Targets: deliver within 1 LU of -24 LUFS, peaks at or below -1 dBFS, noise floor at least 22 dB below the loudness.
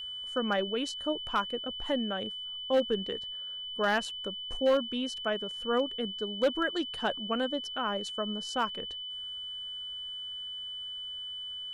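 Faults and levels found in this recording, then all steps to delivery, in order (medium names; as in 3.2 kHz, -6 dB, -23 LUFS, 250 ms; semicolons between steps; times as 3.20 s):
clipped samples 0.3%; clipping level -19.5 dBFS; steady tone 3 kHz; tone level -37 dBFS; loudness -32.5 LUFS; peak level -19.5 dBFS; loudness target -24.0 LUFS
-> clip repair -19.5 dBFS; band-stop 3 kHz, Q 30; trim +8.5 dB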